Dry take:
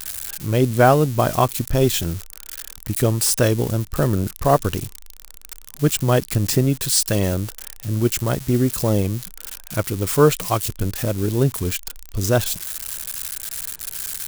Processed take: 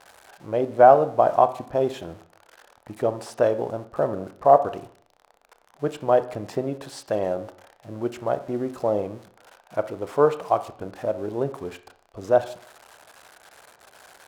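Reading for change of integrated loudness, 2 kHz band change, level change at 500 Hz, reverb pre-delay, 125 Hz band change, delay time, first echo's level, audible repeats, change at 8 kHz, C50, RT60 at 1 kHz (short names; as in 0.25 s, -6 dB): -2.5 dB, -8.5 dB, 0.0 dB, 22 ms, -17.5 dB, none, none, none, under -20 dB, 14.5 dB, 0.60 s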